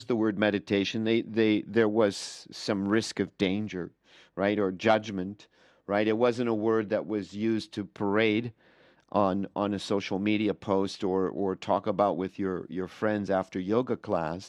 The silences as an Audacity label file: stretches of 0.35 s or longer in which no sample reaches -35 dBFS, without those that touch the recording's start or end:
3.870000	4.380000	silence
5.330000	5.890000	silence
8.490000	9.120000	silence